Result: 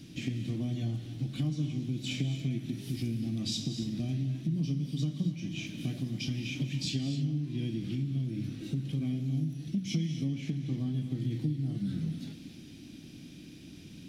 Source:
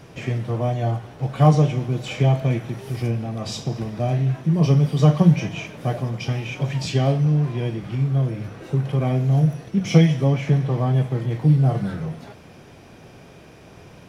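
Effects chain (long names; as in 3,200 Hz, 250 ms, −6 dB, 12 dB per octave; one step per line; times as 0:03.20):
drawn EQ curve 110 Hz 0 dB, 300 Hz +11 dB, 420 Hz −11 dB, 1,000 Hz −18 dB, 3,800 Hz +9 dB, 5,600 Hz +5 dB
downward compressor 5 to 1, threshold −23 dBFS, peak gain reduction 17.5 dB
reverb whose tail is shaped and stops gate 300 ms rising, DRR 9.5 dB
level −7 dB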